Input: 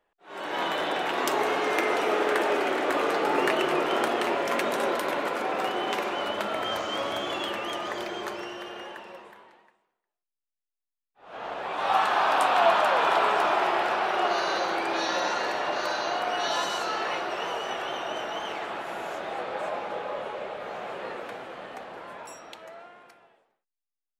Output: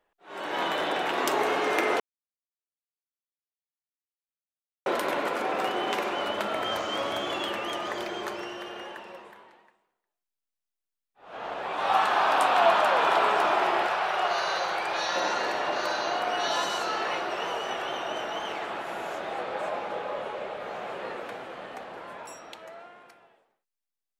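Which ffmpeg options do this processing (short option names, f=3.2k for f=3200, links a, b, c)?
-filter_complex "[0:a]asettb=1/sr,asplit=3[a][b][c];[a]atrim=end=13.874[d];[b]atrim=start=13.87:end=15.16,asetpts=PTS-STARTPTS,afade=t=in:d=0.004:c=qsin,afade=t=out:st=1.286:d=0.004:c=qsin,equalizer=f=290:t=o:w=0.77:g=-15[e];[c]atrim=start=15.156[f];[d][e]acrossfade=d=0.004:c1=hsin:c2=qsin[g];[g][f]acrossfade=d=0.004:c1=qsin:c2=hsin,asplit=3[h][i][j];[h]atrim=end=2,asetpts=PTS-STARTPTS,afade=t=out:st=1.996:d=0.004:c=hsin[k];[i]atrim=start=2:end=4.86,asetpts=PTS-STARTPTS,volume=0[l];[j]atrim=start=4.86,asetpts=PTS-STARTPTS,afade=t=in:d=0.004:c=hsin[m];[k][l][m]concat=n=3:v=0:a=1"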